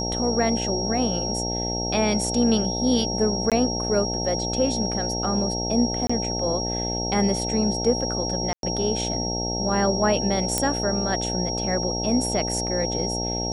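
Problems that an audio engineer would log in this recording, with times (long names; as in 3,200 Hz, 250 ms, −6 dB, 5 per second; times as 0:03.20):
mains buzz 60 Hz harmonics 15 −29 dBFS
whistle 5,600 Hz −28 dBFS
0:03.50–0:03.52: drop-out 17 ms
0:06.07–0:06.09: drop-out 25 ms
0:08.53–0:08.63: drop-out 102 ms
0:10.58: click −5 dBFS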